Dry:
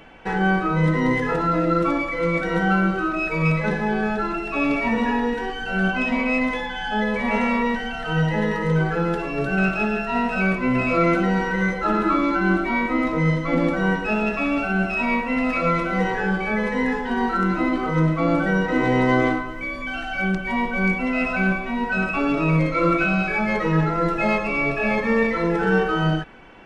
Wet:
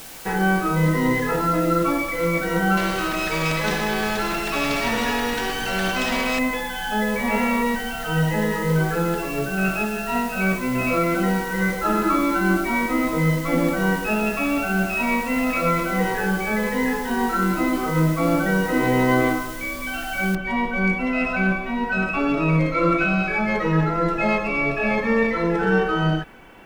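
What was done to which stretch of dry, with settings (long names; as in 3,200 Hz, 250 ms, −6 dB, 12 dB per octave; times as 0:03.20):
0:02.77–0:06.39: every bin compressed towards the loudest bin 2 to 1
0:09.35–0:11.60: amplitude tremolo 2.6 Hz, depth 34%
0:20.35: noise floor change −40 dB −66 dB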